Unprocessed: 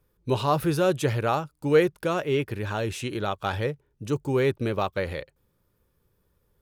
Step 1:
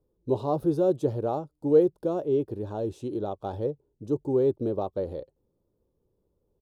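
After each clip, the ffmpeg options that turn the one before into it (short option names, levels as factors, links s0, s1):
-af "firequalizer=gain_entry='entry(150,0);entry(310,8);entry(780,2);entry(1300,-12);entry(2100,-25);entry(3600,-10);entry(13000,-13)':delay=0.05:min_phase=1,volume=0.501"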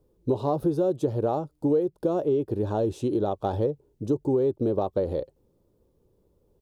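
-af "acompressor=threshold=0.0355:ratio=6,volume=2.51"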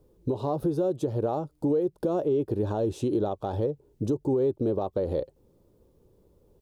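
-af "alimiter=limit=0.075:level=0:latency=1:release=311,volume=1.68"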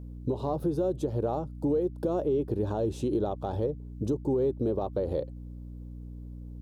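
-af "aeval=exprs='val(0)+0.0126*(sin(2*PI*60*n/s)+sin(2*PI*2*60*n/s)/2+sin(2*PI*3*60*n/s)/3+sin(2*PI*4*60*n/s)/4+sin(2*PI*5*60*n/s)/5)':c=same,volume=0.794"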